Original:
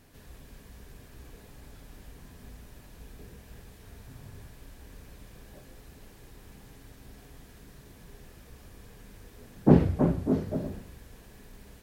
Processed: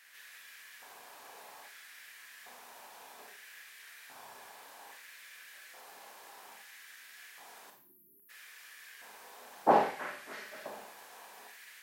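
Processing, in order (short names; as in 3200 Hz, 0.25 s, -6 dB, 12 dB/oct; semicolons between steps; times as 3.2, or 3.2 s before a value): spectral delete 7.7–8.3, 390–11000 Hz; LFO high-pass square 0.61 Hz 820–1800 Hz; Schroeder reverb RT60 0.41 s, combs from 29 ms, DRR 3.5 dB; gain +2 dB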